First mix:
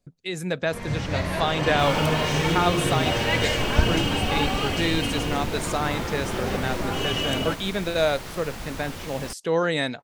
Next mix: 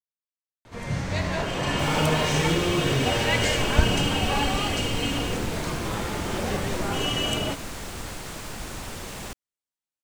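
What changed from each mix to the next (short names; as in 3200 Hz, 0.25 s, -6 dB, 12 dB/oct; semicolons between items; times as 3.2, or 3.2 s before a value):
speech: muted; master: add bell 7900 Hz +5.5 dB 0.74 oct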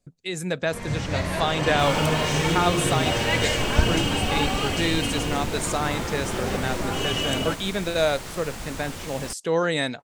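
speech: unmuted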